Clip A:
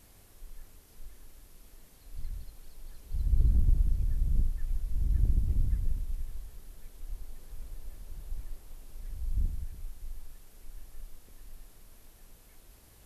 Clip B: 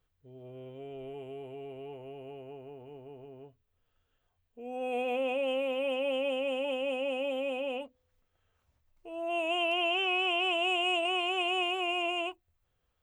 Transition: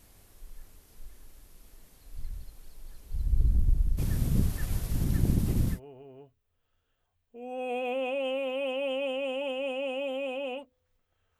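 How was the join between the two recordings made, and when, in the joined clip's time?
clip A
3.97–5.80 s: spectral peaks clipped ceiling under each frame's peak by 21 dB
5.75 s: go over to clip B from 2.98 s, crossfade 0.10 s

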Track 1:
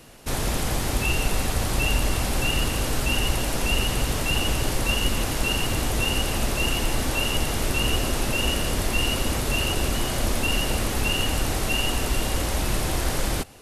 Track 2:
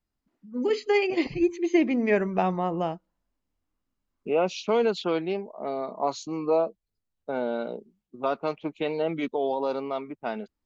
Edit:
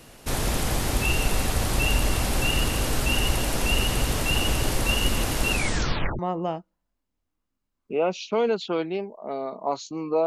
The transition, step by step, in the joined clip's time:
track 1
5.50 s: tape stop 0.69 s
6.19 s: go over to track 2 from 2.55 s

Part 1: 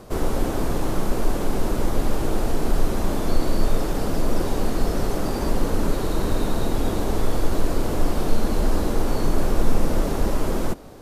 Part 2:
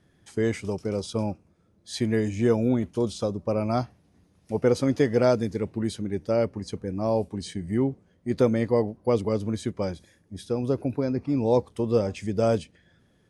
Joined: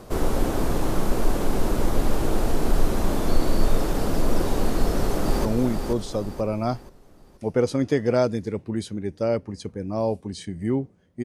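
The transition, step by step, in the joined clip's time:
part 1
4.79–5.45 s: echo throw 480 ms, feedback 40%, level -5.5 dB
5.45 s: go over to part 2 from 2.53 s

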